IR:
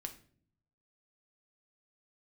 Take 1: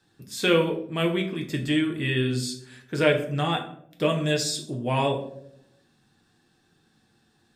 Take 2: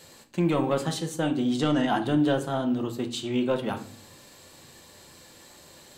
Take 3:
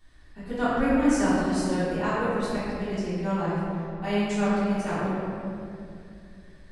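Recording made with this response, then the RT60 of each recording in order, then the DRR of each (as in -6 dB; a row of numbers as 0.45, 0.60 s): 2; 0.75 s, not exponential, 2.6 s; 2.0, 5.0, -13.5 dB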